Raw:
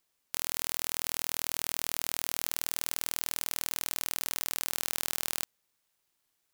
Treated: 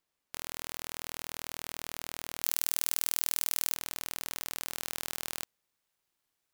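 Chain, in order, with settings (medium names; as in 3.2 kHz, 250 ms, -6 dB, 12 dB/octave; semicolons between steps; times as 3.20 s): treble shelf 3.9 kHz -7.5 dB, from 2.44 s +6 dB, from 3.76 s -3.5 dB; trim -2 dB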